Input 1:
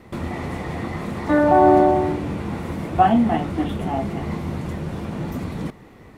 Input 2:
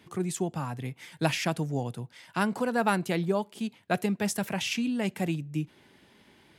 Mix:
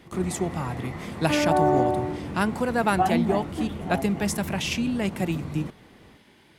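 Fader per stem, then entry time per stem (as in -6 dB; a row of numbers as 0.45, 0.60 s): -7.5, +2.5 dB; 0.00, 0.00 s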